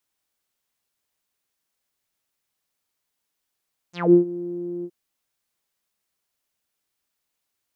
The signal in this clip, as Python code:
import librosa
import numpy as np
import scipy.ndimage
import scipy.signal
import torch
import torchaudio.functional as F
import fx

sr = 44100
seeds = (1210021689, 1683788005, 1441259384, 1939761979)

y = fx.sub_voice(sr, note=53, wave='saw', cutoff_hz=350.0, q=9.4, env_oct=4.5, env_s=0.15, attack_ms=204.0, decay_s=0.11, sustain_db=-19, release_s=0.06, note_s=0.91, slope=12)